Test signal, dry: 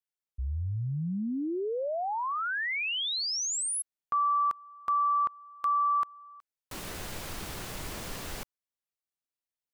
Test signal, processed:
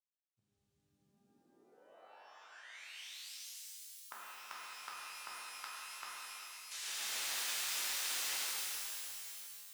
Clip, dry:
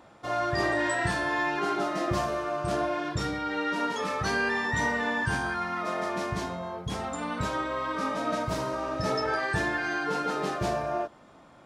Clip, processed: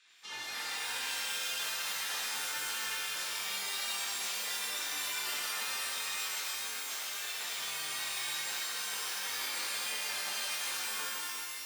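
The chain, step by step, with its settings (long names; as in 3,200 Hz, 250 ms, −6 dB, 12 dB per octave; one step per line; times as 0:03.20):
gate on every frequency bin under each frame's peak −15 dB weak
meter weighting curve ITU-R 468
downward compressor, threshold −34 dBFS
high-shelf EQ 4,500 Hz −9.5 dB
reverb with rising layers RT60 2.9 s, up +12 semitones, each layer −2 dB, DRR −7 dB
level −5.5 dB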